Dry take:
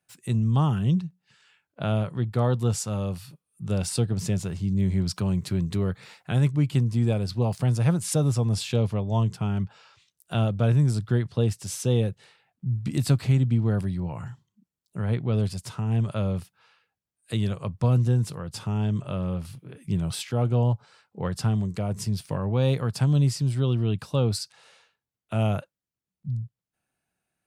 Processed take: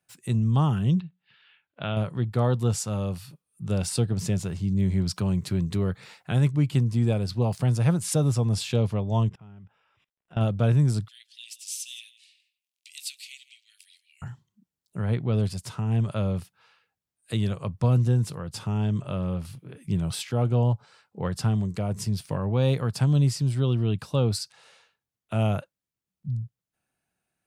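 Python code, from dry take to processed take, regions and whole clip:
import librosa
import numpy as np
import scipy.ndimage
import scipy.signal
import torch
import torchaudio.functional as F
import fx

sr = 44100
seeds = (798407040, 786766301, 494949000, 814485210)

y = fx.chain(x, sr, fx.steep_lowpass(hz=3700.0, slope=36),
    fx.tilt_shelf(db=-5.5, hz=1400.0), at=(1.0, 1.97))
y = fx.chain(y, sr, fx.cvsd(bps=64000),
    fx.savgol(points=25),
    fx.level_steps(step_db=23), at=(9.29, 10.41))
y = fx.chain(y, sr, fx.steep_highpass(hz=2400.0, slope=48),
    fx.echo_single(ms=164, db=-17.5), at=(11.08, 14.22))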